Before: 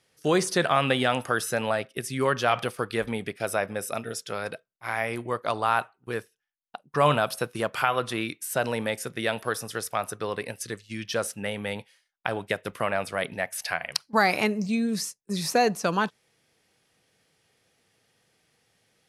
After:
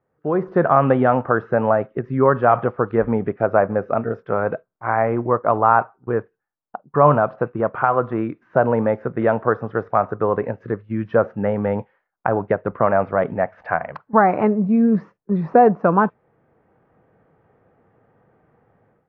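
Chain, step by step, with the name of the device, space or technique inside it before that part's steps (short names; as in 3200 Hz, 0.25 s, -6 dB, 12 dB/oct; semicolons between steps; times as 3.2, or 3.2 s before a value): action camera in a waterproof case (LPF 1300 Hz 24 dB/oct; AGC gain up to 14 dB; AAC 48 kbps 16000 Hz)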